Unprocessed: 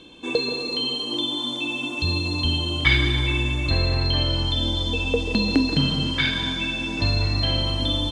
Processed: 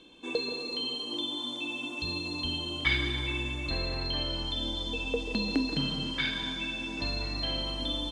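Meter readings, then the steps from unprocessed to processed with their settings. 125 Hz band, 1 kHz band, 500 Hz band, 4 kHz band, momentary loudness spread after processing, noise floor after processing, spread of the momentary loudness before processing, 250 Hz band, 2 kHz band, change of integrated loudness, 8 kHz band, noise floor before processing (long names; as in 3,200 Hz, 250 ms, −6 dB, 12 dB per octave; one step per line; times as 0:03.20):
−14.5 dB, −8.0 dB, −8.0 dB, −8.0 dB, 4 LU, −38 dBFS, 5 LU, −9.0 dB, −8.0 dB, −9.0 dB, −8.0 dB, −30 dBFS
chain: parametric band 98 Hz −13 dB 0.7 octaves
level −8 dB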